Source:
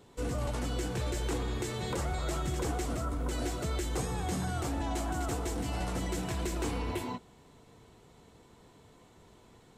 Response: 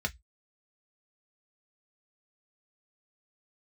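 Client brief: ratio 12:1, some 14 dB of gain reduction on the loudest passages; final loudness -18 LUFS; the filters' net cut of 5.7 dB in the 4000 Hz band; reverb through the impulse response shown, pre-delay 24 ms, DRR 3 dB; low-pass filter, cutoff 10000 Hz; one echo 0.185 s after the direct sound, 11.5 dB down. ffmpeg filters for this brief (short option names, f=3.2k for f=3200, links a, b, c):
-filter_complex "[0:a]lowpass=10k,equalizer=f=4k:t=o:g=-7.5,acompressor=threshold=-44dB:ratio=12,aecho=1:1:185:0.266,asplit=2[a][b];[1:a]atrim=start_sample=2205,adelay=24[c];[b][c]afir=irnorm=-1:irlink=0,volume=-8dB[d];[a][d]amix=inputs=2:normalize=0,volume=25dB"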